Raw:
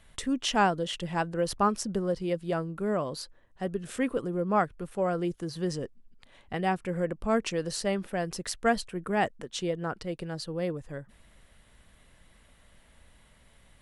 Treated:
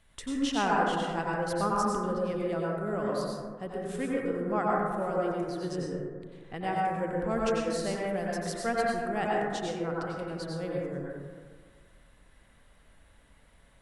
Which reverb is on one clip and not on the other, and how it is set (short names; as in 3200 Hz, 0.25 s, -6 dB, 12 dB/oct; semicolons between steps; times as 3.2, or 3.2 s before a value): plate-style reverb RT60 1.7 s, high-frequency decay 0.25×, pre-delay 80 ms, DRR -4.5 dB; gain -6.5 dB